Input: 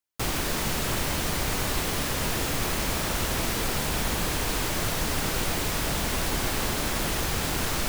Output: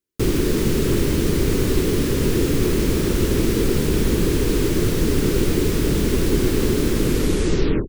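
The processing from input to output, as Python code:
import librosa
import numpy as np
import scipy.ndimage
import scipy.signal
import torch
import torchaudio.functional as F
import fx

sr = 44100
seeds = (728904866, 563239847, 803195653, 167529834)

y = fx.tape_stop_end(x, sr, length_s=0.95)
y = fx.low_shelf_res(y, sr, hz=530.0, db=10.0, q=3.0)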